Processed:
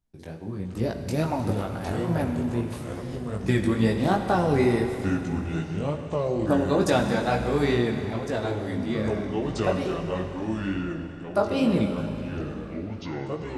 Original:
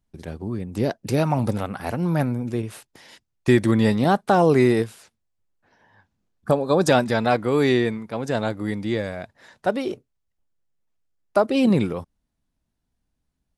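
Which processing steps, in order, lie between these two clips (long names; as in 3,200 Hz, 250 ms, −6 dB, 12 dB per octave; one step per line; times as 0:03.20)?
delay with pitch and tempo change per echo 393 ms, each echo −5 semitones, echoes 3, each echo −6 dB
chorus effect 2.3 Hz, delay 17 ms, depth 4.3 ms
four-comb reverb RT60 3.3 s, combs from 33 ms, DRR 6 dB
level −2 dB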